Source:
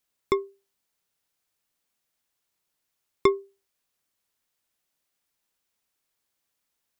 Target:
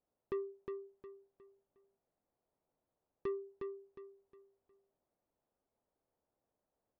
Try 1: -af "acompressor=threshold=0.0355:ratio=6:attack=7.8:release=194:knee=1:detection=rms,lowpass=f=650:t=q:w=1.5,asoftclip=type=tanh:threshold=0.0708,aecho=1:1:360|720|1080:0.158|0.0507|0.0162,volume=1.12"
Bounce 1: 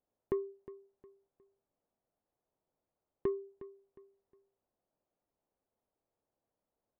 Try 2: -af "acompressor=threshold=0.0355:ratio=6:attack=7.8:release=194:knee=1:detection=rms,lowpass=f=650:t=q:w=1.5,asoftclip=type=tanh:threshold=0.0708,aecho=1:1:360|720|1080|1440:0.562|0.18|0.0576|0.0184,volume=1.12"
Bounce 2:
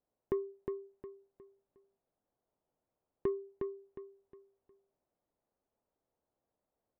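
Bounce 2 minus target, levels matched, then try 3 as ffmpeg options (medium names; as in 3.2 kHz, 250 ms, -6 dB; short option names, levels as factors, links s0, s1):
saturation: distortion -8 dB
-af "acompressor=threshold=0.0355:ratio=6:attack=7.8:release=194:knee=1:detection=rms,lowpass=f=650:t=q:w=1.5,asoftclip=type=tanh:threshold=0.02,aecho=1:1:360|720|1080|1440:0.562|0.18|0.0576|0.0184,volume=1.12"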